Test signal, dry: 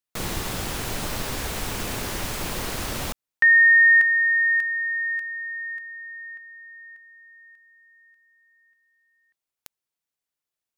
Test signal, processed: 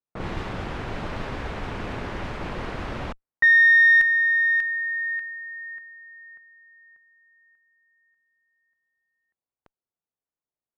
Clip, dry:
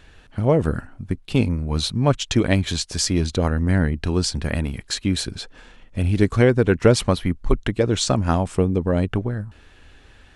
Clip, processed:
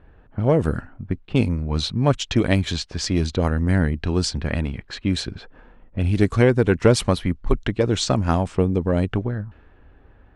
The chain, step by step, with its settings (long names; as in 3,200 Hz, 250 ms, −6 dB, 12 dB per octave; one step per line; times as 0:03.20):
one-sided soft clipper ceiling −2 dBFS
low-pass that shuts in the quiet parts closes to 1,000 Hz, open at −14.5 dBFS